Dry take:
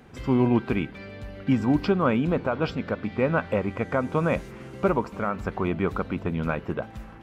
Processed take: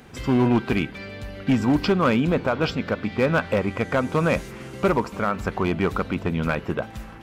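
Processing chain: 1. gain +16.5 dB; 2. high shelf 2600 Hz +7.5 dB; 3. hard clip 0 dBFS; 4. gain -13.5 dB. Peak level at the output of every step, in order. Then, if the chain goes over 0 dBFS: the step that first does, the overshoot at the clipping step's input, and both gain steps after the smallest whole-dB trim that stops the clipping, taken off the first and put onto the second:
+4.5, +5.5, 0.0, -13.5 dBFS; step 1, 5.5 dB; step 1 +10.5 dB, step 4 -7.5 dB

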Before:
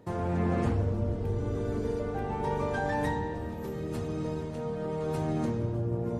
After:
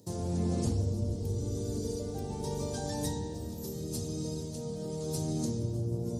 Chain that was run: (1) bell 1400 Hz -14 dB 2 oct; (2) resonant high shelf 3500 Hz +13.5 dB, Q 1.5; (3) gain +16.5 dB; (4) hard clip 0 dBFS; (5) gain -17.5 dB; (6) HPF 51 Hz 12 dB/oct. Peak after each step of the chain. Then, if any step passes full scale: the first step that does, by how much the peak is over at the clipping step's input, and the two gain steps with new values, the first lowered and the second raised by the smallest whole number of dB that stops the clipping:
-19.5, -19.0, -2.5, -2.5, -20.0, -18.5 dBFS; no overload

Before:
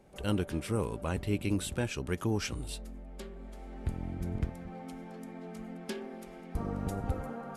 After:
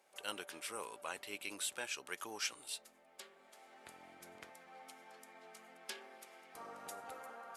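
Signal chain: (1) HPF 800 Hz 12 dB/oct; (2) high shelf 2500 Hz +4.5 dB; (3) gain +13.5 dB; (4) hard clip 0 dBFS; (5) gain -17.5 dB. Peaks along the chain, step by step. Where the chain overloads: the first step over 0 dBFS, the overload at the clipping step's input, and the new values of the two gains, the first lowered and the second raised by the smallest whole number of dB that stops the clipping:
-21.5, -19.5, -6.0, -6.0, -23.5 dBFS; no overload

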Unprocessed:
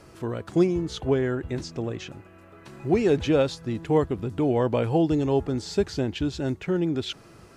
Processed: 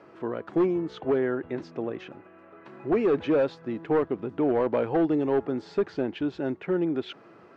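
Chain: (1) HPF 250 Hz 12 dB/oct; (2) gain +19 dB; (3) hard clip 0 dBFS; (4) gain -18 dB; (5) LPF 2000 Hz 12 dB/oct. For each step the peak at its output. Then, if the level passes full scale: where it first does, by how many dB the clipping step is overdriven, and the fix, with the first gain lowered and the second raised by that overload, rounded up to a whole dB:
-10.5, +8.5, 0.0, -18.0, -17.5 dBFS; step 2, 8.5 dB; step 2 +10 dB, step 4 -9 dB

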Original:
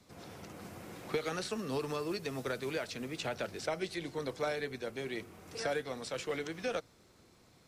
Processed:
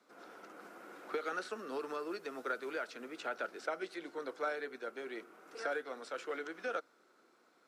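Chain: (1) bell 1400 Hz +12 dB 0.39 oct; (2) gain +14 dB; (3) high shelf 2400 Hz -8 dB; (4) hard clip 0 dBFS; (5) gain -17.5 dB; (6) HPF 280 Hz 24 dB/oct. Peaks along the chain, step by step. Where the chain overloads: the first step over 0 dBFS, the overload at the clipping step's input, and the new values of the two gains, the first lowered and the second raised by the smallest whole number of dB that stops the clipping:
-17.5, -3.5, -5.0, -5.0, -22.5, -23.0 dBFS; no overload

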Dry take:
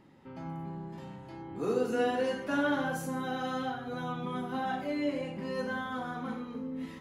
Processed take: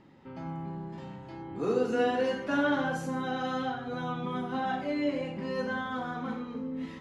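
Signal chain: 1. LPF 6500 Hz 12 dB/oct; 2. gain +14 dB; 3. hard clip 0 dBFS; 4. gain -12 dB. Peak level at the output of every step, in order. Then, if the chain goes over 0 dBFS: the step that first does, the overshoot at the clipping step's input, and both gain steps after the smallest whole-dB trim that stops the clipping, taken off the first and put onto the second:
-17.0, -3.0, -3.0, -15.0 dBFS; no overload

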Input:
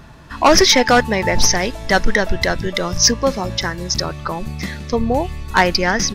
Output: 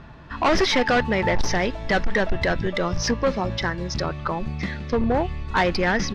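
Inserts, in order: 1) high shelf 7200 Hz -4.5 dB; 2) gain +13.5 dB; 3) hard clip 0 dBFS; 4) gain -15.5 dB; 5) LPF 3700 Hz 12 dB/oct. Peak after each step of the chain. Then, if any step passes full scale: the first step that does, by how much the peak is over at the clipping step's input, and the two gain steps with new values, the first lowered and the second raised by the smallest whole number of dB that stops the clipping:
-3.5, +10.0, 0.0, -15.5, -14.5 dBFS; step 2, 10.0 dB; step 2 +3.5 dB, step 4 -5.5 dB

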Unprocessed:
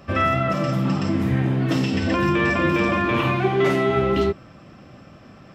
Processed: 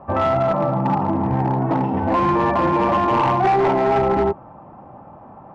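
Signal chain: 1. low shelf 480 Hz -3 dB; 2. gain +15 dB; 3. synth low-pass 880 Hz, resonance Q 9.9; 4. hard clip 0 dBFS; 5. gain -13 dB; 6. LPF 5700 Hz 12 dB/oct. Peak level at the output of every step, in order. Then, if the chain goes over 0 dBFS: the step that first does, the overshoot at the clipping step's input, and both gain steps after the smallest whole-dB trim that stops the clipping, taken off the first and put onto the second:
-10.0, +5.0, +9.0, 0.0, -13.0, -12.5 dBFS; step 2, 9.0 dB; step 2 +6 dB, step 5 -4 dB

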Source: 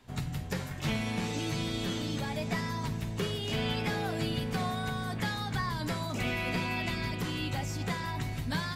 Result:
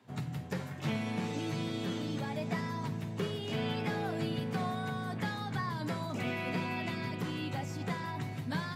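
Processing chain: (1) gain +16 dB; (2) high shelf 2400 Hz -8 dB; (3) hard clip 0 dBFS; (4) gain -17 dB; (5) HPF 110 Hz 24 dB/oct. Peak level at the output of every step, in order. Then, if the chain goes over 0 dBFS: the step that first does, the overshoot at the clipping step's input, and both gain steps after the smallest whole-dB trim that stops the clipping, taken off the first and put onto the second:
-3.5, -4.0, -4.0, -21.0, -21.5 dBFS; no overload

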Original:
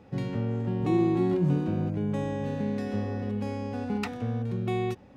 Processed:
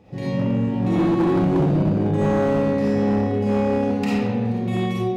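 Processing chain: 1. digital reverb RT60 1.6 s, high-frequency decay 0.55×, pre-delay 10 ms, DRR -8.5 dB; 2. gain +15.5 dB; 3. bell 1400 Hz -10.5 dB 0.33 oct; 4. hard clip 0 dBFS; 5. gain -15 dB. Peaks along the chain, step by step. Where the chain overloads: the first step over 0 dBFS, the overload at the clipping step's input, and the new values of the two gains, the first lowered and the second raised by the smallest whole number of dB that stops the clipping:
-5.5, +10.0, +10.0, 0.0, -15.0 dBFS; step 2, 10.0 dB; step 2 +5.5 dB, step 5 -5 dB

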